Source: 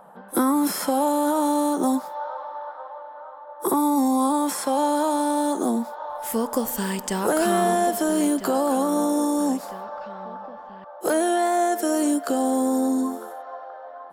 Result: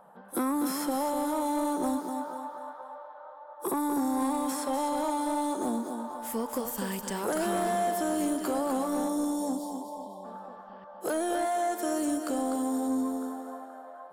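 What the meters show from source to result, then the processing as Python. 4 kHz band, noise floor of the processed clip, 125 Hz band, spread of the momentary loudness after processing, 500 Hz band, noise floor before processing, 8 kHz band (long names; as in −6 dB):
−7.5 dB, −48 dBFS, can't be measured, 15 LU, −7.5 dB, −41 dBFS, −7.5 dB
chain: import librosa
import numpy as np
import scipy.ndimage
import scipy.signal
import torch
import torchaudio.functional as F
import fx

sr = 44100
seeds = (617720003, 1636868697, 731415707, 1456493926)

y = fx.spec_erase(x, sr, start_s=9.09, length_s=1.16, low_hz=1100.0, high_hz=3100.0)
y = fx.echo_feedback(y, sr, ms=248, feedback_pct=34, wet_db=-7)
y = 10.0 ** (-14.0 / 20.0) * np.tanh(y / 10.0 ** (-14.0 / 20.0))
y = F.gain(torch.from_numpy(y), -7.0).numpy()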